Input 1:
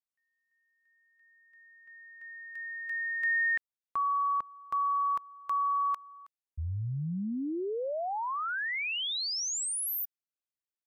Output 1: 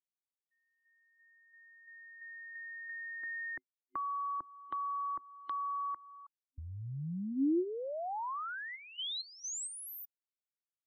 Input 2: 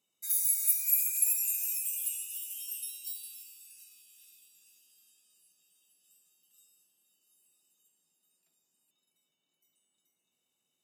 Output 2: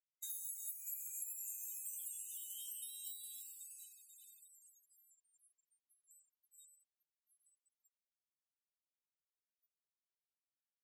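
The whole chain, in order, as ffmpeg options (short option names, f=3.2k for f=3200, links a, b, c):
-filter_complex "[0:a]acrossover=split=160|1100[a][b][c];[a]acompressor=threshold=-45dB:ratio=4[d];[b]acompressor=threshold=-37dB:ratio=4[e];[c]acompressor=threshold=-45dB:ratio=4[f];[d][e][f]amix=inputs=3:normalize=0,afftfilt=real='re*gte(hypot(re,im),0.00178)':imag='im*gte(hypot(re,im),0.00178)':win_size=1024:overlap=0.75,superequalizer=6b=3.16:12b=0.398:13b=2.24:14b=0.355:15b=2,volume=-2dB"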